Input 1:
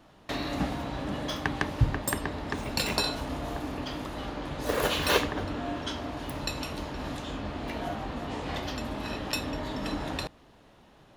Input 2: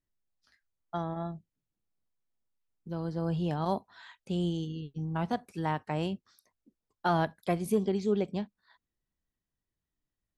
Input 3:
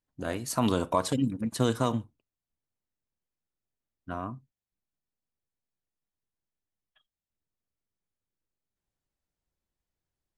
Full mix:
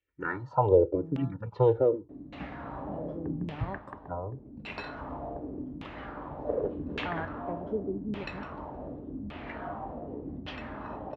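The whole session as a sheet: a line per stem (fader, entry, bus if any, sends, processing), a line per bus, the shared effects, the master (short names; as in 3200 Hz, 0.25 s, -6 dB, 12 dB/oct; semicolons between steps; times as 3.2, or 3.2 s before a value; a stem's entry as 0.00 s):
-6.5 dB, 1.80 s, no send, auto duck -11 dB, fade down 0.65 s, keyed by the third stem
-10.5 dB, 0.00 s, muted 4.19–6.89, no send, dry
+0.5 dB, 0.00 s, no send, LPF 5200 Hz; comb 2.2 ms, depth 96%; endless phaser -1.1 Hz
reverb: off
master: HPF 44 Hz; LFO low-pass saw down 0.86 Hz 210–3000 Hz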